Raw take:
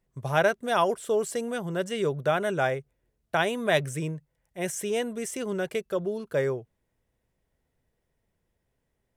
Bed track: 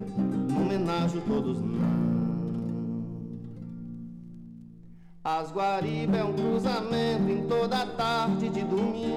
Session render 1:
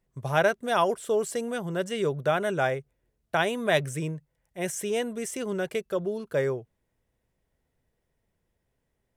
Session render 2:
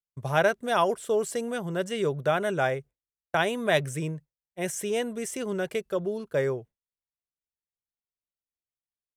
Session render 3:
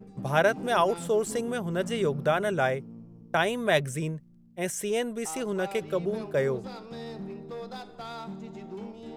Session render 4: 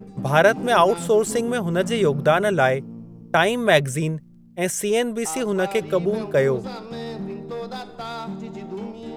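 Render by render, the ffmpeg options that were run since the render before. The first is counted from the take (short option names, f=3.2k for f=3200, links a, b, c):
-af anull
-af "agate=range=-33dB:threshold=-38dB:ratio=3:detection=peak"
-filter_complex "[1:a]volume=-12.5dB[a];[0:a][a]amix=inputs=2:normalize=0"
-af "volume=7.5dB,alimiter=limit=-3dB:level=0:latency=1"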